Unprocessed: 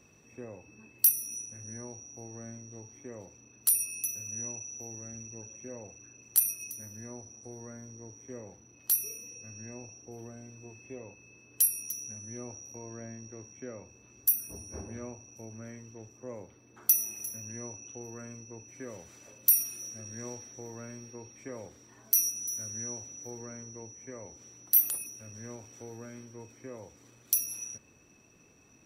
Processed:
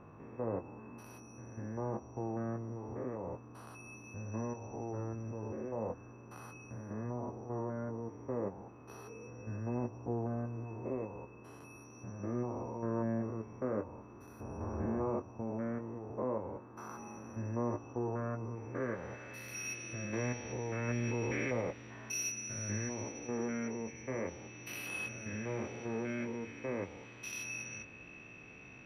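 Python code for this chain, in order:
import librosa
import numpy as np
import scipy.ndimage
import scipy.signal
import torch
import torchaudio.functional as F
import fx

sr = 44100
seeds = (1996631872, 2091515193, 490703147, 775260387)

y = fx.spec_steps(x, sr, hold_ms=200)
y = fx.chorus_voices(y, sr, voices=2, hz=0.1, base_ms=19, depth_ms=4.1, mix_pct=30)
y = fx.filter_sweep_lowpass(y, sr, from_hz=1100.0, to_hz=2500.0, start_s=18.39, end_s=19.79, q=2.5)
y = fx.env_flatten(y, sr, amount_pct=70, at=(20.87, 21.6), fade=0.02)
y = y * 10.0 ** (10.5 / 20.0)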